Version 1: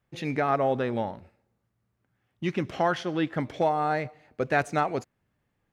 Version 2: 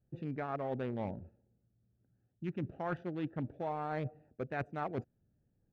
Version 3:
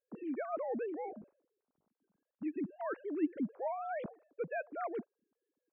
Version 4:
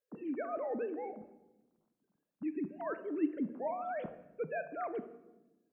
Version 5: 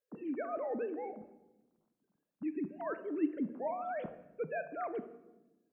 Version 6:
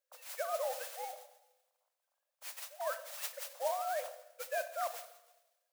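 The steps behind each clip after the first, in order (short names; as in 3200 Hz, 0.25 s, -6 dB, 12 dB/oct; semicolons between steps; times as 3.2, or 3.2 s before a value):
Wiener smoothing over 41 samples; tone controls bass +3 dB, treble -9 dB; reverse; compressor 10:1, threshold -33 dBFS, peak gain reduction 14 dB; reverse; gain -1 dB
sine-wave speech
reverb RT60 1.0 s, pre-delay 7 ms, DRR 10 dB
nothing audible
modulation noise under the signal 12 dB; brick-wall FIR high-pass 500 Hz; gain +2 dB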